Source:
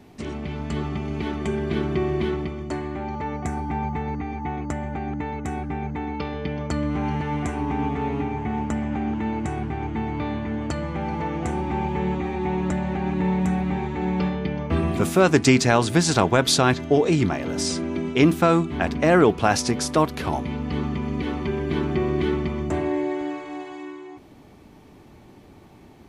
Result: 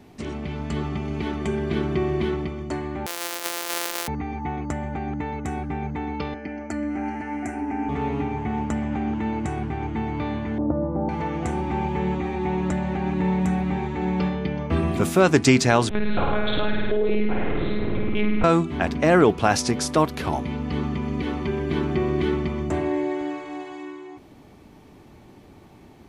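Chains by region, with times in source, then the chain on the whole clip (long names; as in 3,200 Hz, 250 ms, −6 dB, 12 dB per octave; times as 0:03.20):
0:03.06–0:04.08: samples sorted by size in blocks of 256 samples + high-pass filter 320 Hz 24 dB per octave + spectral tilt +3 dB per octave
0:06.34–0:07.89: high-pass filter 87 Hz 24 dB per octave + phaser with its sweep stopped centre 720 Hz, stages 8
0:10.58–0:11.09: inverse Chebyshev low-pass filter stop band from 4,500 Hz, stop band 70 dB + hollow resonant body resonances 290/540 Hz, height 9 dB, ringing for 35 ms
0:15.89–0:18.44: one-pitch LPC vocoder at 8 kHz 210 Hz + flutter between parallel walls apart 8.9 metres, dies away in 1.1 s + downward compressor 4 to 1, threshold −17 dBFS
whole clip: no processing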